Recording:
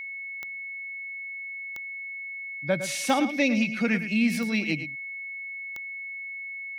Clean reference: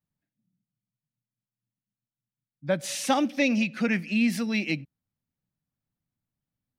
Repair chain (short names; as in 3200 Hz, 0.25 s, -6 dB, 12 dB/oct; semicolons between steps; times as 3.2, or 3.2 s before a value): de-click; notch 2200 Hz, Q 30; inverse comb 0.109 s -11.5 dB